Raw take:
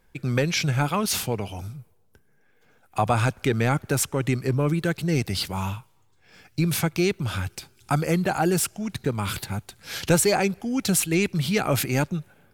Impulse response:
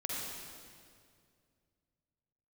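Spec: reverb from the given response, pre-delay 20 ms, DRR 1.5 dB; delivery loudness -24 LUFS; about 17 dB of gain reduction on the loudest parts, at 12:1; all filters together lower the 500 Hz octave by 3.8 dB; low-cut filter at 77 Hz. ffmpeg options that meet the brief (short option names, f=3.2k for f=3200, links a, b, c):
-filter_complex "[0:a]highpass=77,equalizer=f=500:t=o:g=-5,acompressor=threshold=-35dB:ratio=12,asplit=2[a][b];[1:a]atrim=start_sample=2205,adelay=20[c];[b][c]afir=irnorm=-1:irlink=0,volume=-4.5dB[d];[a][d]amix=inputs=2:normalize=0,volume=13dB"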